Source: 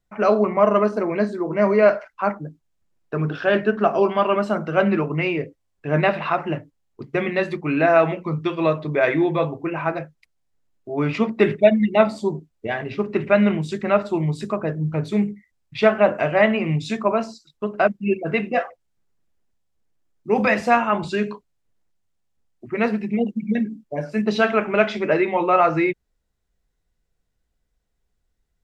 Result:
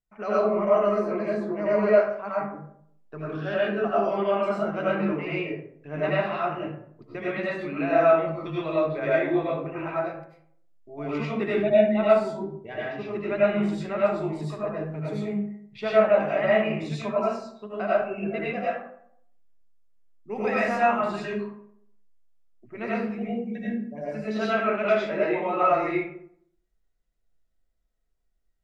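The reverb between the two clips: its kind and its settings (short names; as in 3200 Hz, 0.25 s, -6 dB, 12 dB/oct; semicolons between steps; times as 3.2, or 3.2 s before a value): digital reverb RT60 0.67 s, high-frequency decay 0.5×, pre-delay 55 ms, DRR -8 dB; gain -14.5 dB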